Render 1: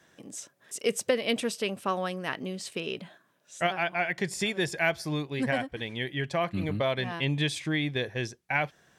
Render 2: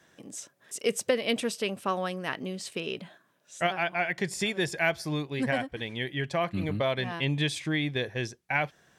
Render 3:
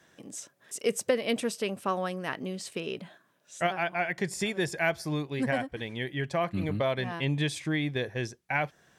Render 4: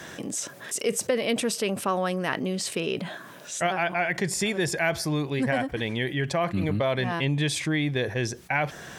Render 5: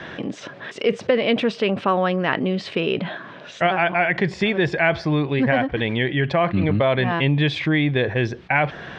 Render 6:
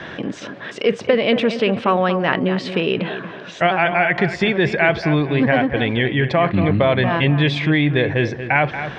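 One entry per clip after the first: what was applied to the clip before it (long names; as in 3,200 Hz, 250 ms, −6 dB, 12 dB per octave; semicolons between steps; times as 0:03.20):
no processing that can be heard
dynamic equaliser 3,300 Hz, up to −4 dB, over −44 dBFS, Q 1
envelope flattener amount 50%
low-pass filter 3,600 Hz 24 dB per octave; level +6.5 dB
bucket-brigade delay 232 ms, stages 4,096, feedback 32%, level −10.5 dB; level +2.5 dB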